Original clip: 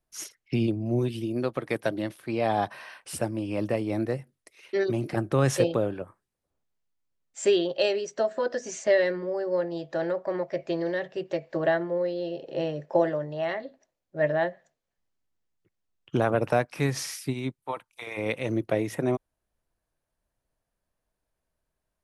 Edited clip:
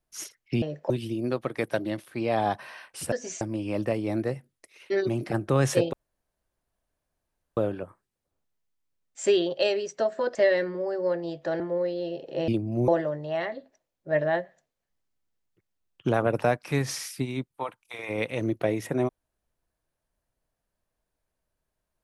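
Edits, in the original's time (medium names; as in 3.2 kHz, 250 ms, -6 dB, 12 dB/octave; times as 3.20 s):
0.62–1.02 s: swap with 12.68–12.96 s
5.76 s: insert room tone 1.64 s
8.54–8.83 s: move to 3.24 s
10.08–11.80 s: delete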